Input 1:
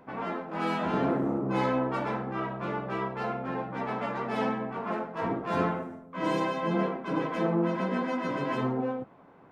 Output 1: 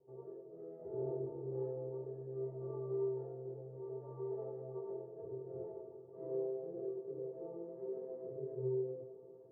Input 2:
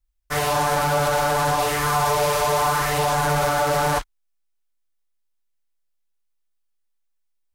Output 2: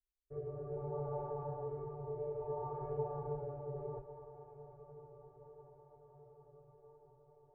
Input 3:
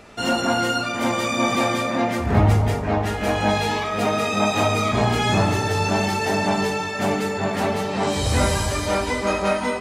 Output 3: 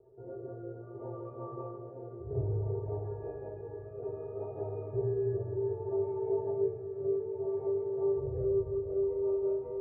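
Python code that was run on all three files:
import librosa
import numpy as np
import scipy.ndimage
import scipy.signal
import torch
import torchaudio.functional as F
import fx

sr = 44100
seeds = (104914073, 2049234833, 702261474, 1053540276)

y = x + 0.66 * np.pad(x, (int(2.4 * sr / 1000.0), 0))[:len(x)]
y = fx.dynamic_eq(y, sr, hz=220.0, q=0.83, threshold_db=-36.0, ratio=4.0, max_db=-5)
y = fx.ladder_lowpass(y, sr, hz=570.0, resonance_pct=65)
y = fx.comb_fb(y, sr, f0_hz=130.0, decay_s=0.18, harmonics='odd', damping=0.0, mix_pct=100)
y = fx.rotary(y, sr, hz=0.6)
y = fx.echo_diffused(y, sr, ms=1527, feedback_pct=53, wet_db=-15)
y = fx.rev_schroeder(y, sr, rt60_s=2.4, comb_ms=29, drr_db=9.0)
y = y * librosa.db_to_amplitude(7.5)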